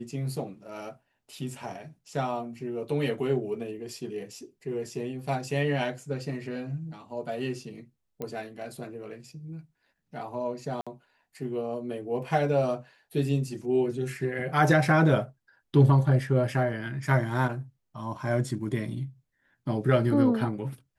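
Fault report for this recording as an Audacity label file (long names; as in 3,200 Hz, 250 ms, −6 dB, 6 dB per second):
8.220000	8.220000	click −21 dBFS
10.810000	10.870000	drop-out 56 ms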